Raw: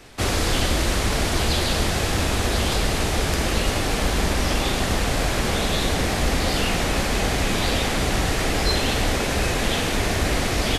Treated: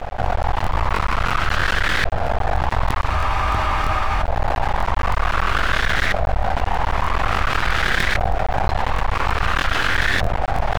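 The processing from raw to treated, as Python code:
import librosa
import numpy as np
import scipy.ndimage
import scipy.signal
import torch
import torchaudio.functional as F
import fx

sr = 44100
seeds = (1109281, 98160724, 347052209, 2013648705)

p1 = x + fx.echo_feedback(x, sr, ms=597, feedback_pct=43, wet_db=-8.0, dry=0)
p2 = fx.filter_lfo_lowpass(p1, sr, shape='saw_up', hz=0.49, low_hz=660.0, high_hz=1800.0, q=3.6)
p3 = fx.tone_stack(p2, sr, knobs='10-0-10')
p4 = np.maximum(p3, 0.0)
p5 = fx.spec_freeze(p4, sr, seeds[0], at_s=3.13, hold_s=1.09)
p6 = fx.buffer_crackle(p5, sr, first_s=0.62, period_s=0.32, block=1024, kind='repeat')
p7 = fx.env_flatten(p6, sr, amount_pct=70)
y = F.gain(torch.from_numpy(p7), 8.5).numpy()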